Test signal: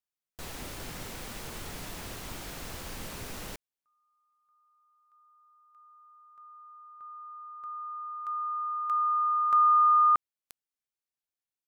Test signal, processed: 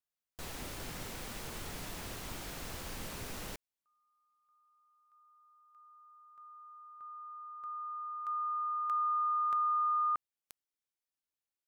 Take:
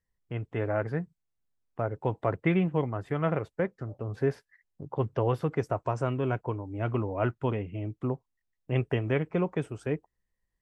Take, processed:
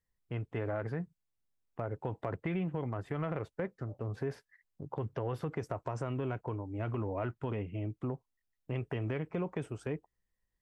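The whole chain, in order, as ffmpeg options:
-af "acompressor=threshold=-27dB:ratio=6:attack=2.2:release=91:knee=1:detection=peak,volume=-2.5dB"

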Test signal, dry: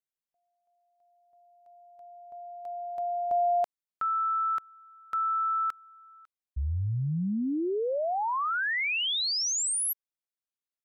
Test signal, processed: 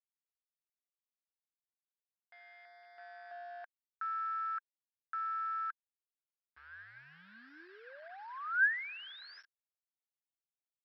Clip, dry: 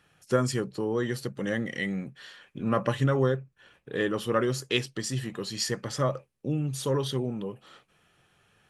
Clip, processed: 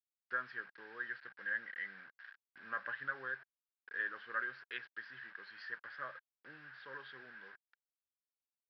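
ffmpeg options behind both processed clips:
-af "aresample=11025,acrusher=bits=6:mix=0:aa=0.000001,aresample=44100,bandpass=f=1.6k:t=q:w=13:csg=0,volume=5dB"

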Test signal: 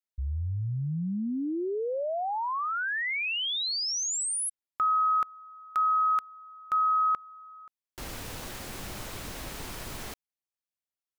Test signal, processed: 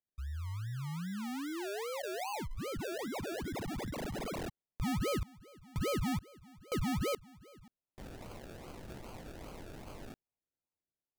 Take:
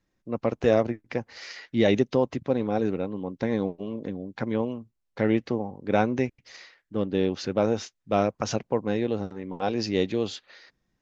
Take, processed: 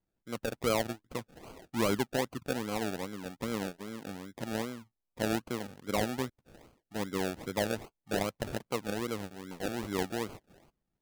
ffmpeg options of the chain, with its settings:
-af "acrusher=samples=34:mix=1:aa=0.000001:lfo=1:lforange=20.4:lforate=2.5,volume=-8.5dB"

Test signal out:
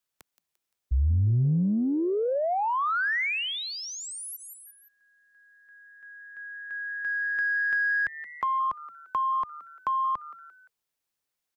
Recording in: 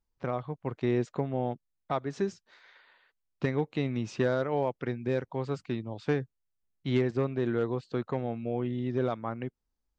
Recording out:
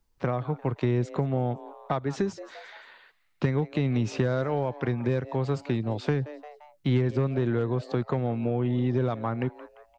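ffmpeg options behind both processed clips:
-filter_complex "[0:a]asplit=4[a][b][c][d];[b]adelay=173,afreqshift=150,volume=-21.5dB[e];[c]adelay=346,afreqshift=300,volume=-28.4dB[f];[d]adelay=519,afreqshift=450,volume=-35.4dB[g];[a][e][f][g]amix=inputs=4:normalize=0,acrossover=split=140[h][i];[i]acompressor=threshold=-35dB:ratio=5[j];[h][j]amix=inputs=2:normalize=0,asplit=2[k][l];[l]asoftclip=type=tanh:threshold=-33.5dB,volume=-10dB[m];[k][m]amix=inputs=2:normalize=0,acrossover=split=2600[n][o];[o]acompressor=threshold=-47dB:ratio=4:attack=1:release=60[p];[n][p]amix=inputs=2:normalize=0,volume=8dB"

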